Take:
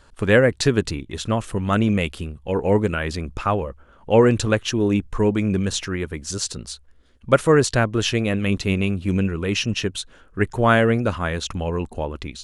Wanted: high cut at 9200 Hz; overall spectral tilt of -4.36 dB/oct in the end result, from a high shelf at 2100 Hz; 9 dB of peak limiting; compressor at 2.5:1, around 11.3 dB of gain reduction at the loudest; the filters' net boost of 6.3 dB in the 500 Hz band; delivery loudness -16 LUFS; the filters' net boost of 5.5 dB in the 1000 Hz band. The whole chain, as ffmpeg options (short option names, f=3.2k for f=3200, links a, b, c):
-af "lowpass=9.2k,equalizer=f=500:t=o:g=6,equalizer=f=1k:t=o:g=3.5,highshelf=f=2.1k:g=7.5,acompressor=threshold=-22dB:ratio=2.5,volume=10dB,alimiter=limit=-5dB:level=0:latency=1"